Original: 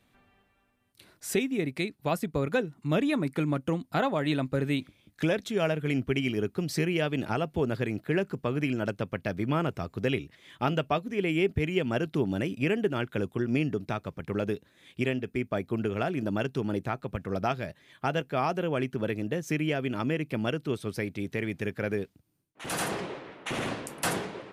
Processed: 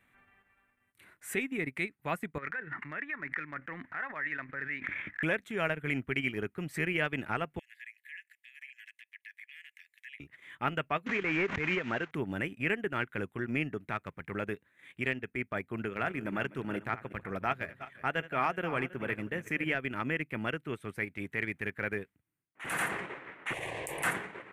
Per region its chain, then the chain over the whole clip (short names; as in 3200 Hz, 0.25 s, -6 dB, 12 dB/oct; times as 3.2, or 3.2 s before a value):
2.38–5.23 band-pass 1800 Hz, Q 5 + tilt -4 dB/oct + fast leveller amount 100%
7.59–10.2 Chebyshev high-pass 1700 Hz, order 8 + compressor 3:1, threshold -49 dBFS
11.06–12.11 delta modulation 32 kbps, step -39 dBFS + low shelf 220 Hz -7.5 dB + backwards sustainer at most 28 dB/s
15.86–19.75 regenerating reverse delay 0.181 s, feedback 42%, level -11 dB + notches 50/100/150 Hz
23.53–24.03 fixed phaser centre 570 Hz, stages 4 + fast leveller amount 100%
whole clip: EQ curve 630 Hz 0 dB, 2000 Hz +13 dB, 5000 Hz -11 dB, 8000 Hz +2 dB; transient shaper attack -4 dB, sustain -8 dB; gain -5.5 dB